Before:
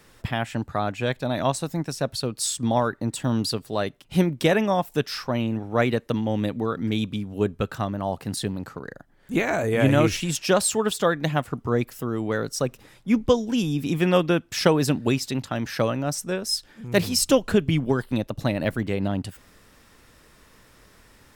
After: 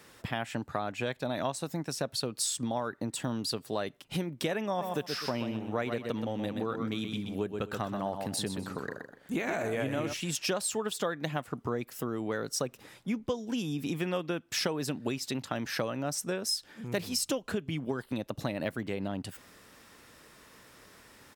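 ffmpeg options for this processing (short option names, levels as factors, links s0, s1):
-filter_complex "[0:a]asplit=3[s0][s1][s2];[s0]afade=t=out:st=4.79:d=0.02[s3];[s1]aecho=1:1:126|252|378:0.422|0.11|0.0285,afade=t=in:st=4.79:d=0.02,afade=t=out:st=10.12:d=0.02[s4];[s2]afade=t=in:st=10.12:d=0.02[s5];[s3][s4][s5]amix=inputs=3:normalize=0,acompressor=threshold=0.0398:ratio=6,highpass=f=180:p=1"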